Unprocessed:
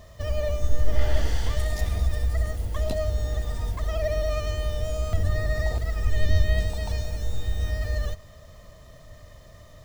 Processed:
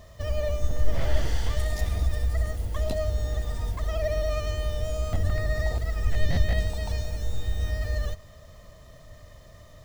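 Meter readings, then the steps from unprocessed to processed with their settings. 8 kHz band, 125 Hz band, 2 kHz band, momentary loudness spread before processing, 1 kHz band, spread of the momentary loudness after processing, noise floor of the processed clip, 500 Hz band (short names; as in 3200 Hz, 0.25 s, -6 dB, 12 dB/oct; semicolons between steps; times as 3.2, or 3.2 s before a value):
-1.0 dB, -1.5 dB, -1.0 dB, 5 LU, -0.5 dB, 4 LU, -49 dBFS, -1.0 dB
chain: one-sided fold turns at -15.5 dBFS; gain -1 dB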